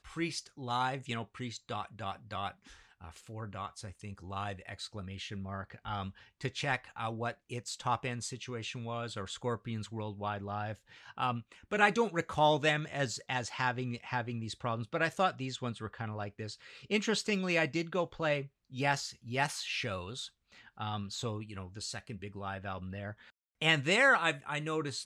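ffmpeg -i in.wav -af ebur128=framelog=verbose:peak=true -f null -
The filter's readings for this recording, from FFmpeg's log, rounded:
Integrated loudness:
  I:         -34.6 LUFS
  Threshold: -45.0 LUFS
Loudness range:
  LRA:        10.4 LU
  Threshold: -55.5 LUFS
  LRA low:   -42.2 LUFS
  LRA high:  -31.8 LUFS
True peak:
  Peak:      -10.6 dBFS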